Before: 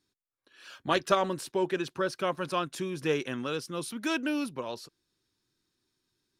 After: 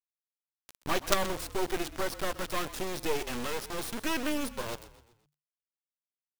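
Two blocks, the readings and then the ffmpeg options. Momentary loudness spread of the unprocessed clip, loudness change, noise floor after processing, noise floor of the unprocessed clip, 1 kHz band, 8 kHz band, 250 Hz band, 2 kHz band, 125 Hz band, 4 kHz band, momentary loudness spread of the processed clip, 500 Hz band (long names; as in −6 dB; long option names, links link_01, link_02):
10 LU, −2.0 dB, below −85 dBFS, −84 dBFS, −2.5 dB, +4.5 dB, −3.5 dB, −1.0 dB, −4.0 dB, +0.5 dB, 7 LU, −3.5 dB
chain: -filter_complex "[0:a]aeval=exprs='0.282*(cos(1*acos(clip(val(0)/0.282,-1,1)))-cos(1*PI/2))+0.0316*(cos(5*acos(clip(val(0)/0.282,-1,1)))-cos(5*PI/2))+0.002*(cos(7*acos(clip(val(0)/0.282,-1,1)))-cos(7*PI/2))+0.00794*(cos(8*acos(clip(val(0)/0.282,-1,1)))-cos(8*PI/2))':channel_layout=same,acrusher=bits=3:dc=4:mix=0:aa=0.000001,asplit=5[link_01][link_02][link_03][link_04][link_05];[link_02]adelay=126,afreqshift=-37,volume=-16dB[link_06];[link_03]adelay=252,afreqshift=-74,volume=-22.7dB[link_07];[link_04]adelay=378,afreqshift=-111,volume=-29.5dB[link_08];[link_05]adelay=504,afreqshift=-148,volume=-36.2dB[link_09];[link_01][link_06][link_07][link_08][link_09]amix=inputs=5:normalize=0"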